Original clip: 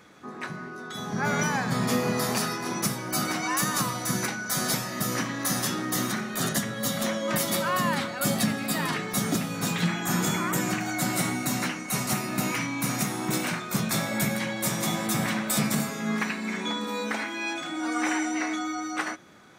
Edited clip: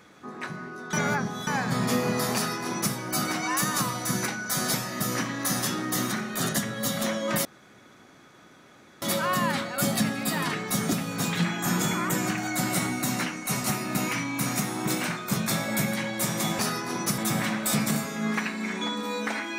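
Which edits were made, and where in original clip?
0.93–1.47 reverse
2.35–2.94 copy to 15.02
7.45 insert room tone 1.57 s

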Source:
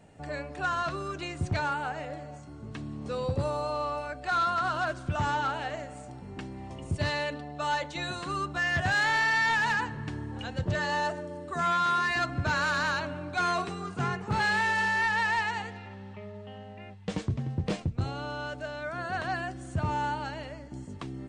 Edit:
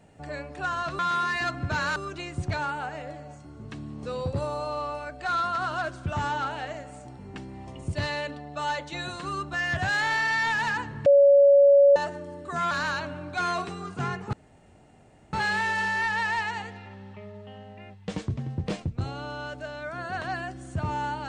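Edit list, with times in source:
10.09–10.99 bleep 563 Hz -12.5 dBFS
11.74–12.71 move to 0.99
14.33 insert room tone 1.00 s

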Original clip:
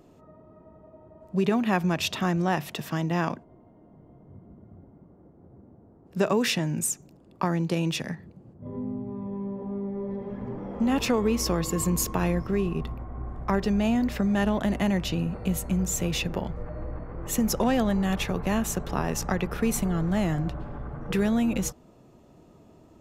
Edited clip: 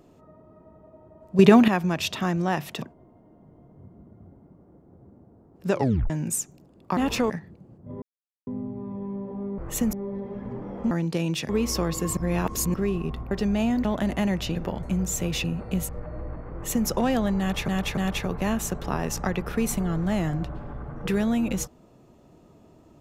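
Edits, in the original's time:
1.39–1.68 gain +10 dB
2.82–3.33 cut
6.23 tape stop 0.38 s
7.48–8.06 swap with 10.87–11.2
8.78 insert silence 0.45 s
11.88–12.45 reverse
13.02–13.56 cut
14.1–14.48 cut
15.18–15.63 swap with 16.24–16.52
17.15–17.5 copy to 9.89
18.02–18.31 loop, 3 plays

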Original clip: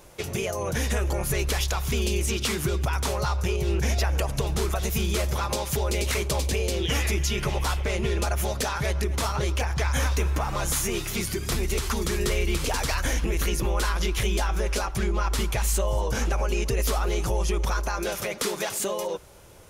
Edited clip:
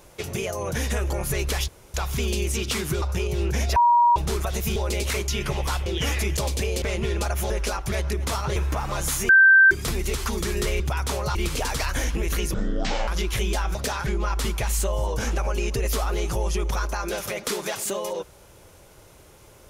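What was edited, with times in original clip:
1.68 insert room tone 0.26 s
2.76–3.31 move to 12.44
4.05–4.45 bleep 954 Hz -13.5 dBFS
5.05–5.77 cut
6.29–6.74 swap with 7.25–7.83
8.51–8.83 swap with 14.59–15.01
9.47–10.2 cut
10.93–11.35 bleep 1560 Hz -10 dBFS
13.63–13.92 speed 54%

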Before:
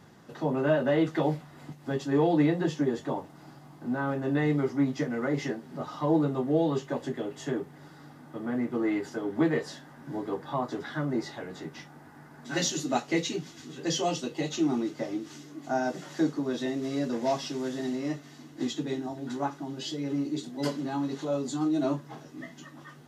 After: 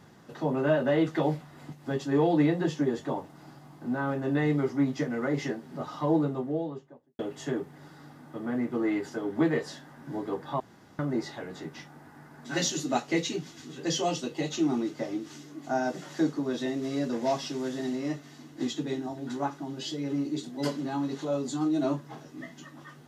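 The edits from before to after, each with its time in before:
5.98–7.19 studio fade out
10.6–10.99 room tone

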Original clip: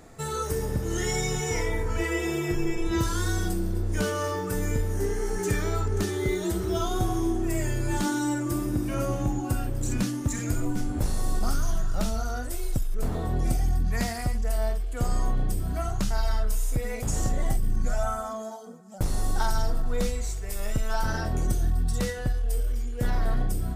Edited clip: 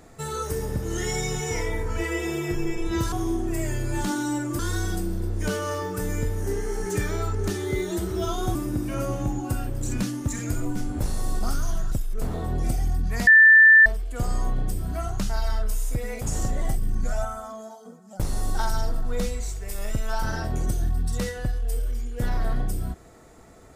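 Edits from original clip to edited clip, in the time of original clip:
7.08–8.55 move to 3.12
11.92–12.73 cut
14.08–14.67 bleep 1770 Hz -9 dBFS
18.06–18.66 gain -3.5 dB

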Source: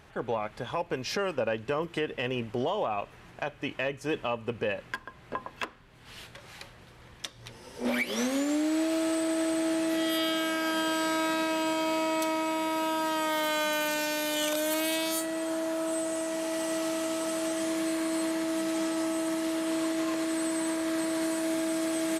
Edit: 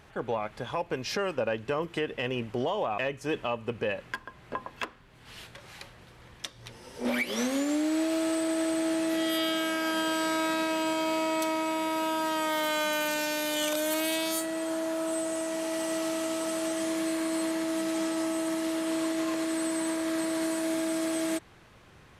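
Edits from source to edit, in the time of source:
2.98–3.78 cut

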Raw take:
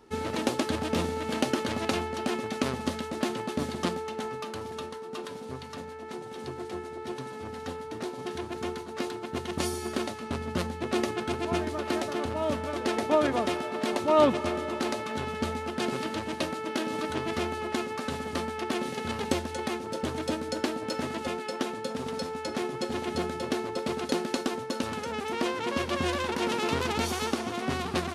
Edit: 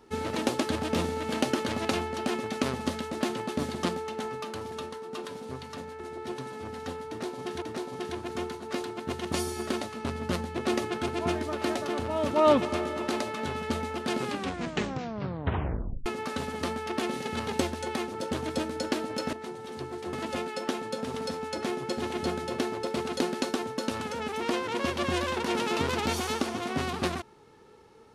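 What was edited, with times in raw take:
6–6.8 move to 21.05
7.88–8.42 loop, 2 plays
12.57–14.03 cut
15.92 tape stop 1.86 s

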